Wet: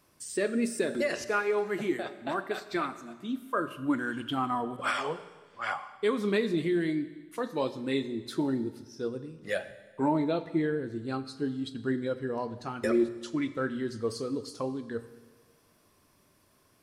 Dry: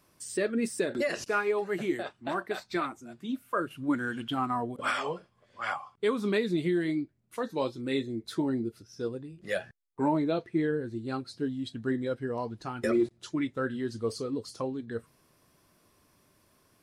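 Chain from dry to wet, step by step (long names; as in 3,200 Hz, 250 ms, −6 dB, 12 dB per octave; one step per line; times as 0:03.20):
mains-hum notches 60/120/180 Hz
four-comb reverb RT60 1.4 s, combs from 30 ms, DRR 12.5 dB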